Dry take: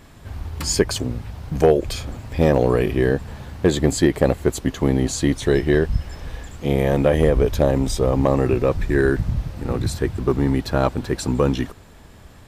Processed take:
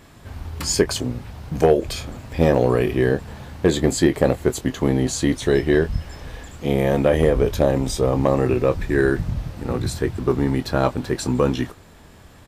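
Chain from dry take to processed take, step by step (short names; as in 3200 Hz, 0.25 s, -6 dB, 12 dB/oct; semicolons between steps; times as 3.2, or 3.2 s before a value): low shelf 74 Hz -6 dB; doubler 24 ms -11 dB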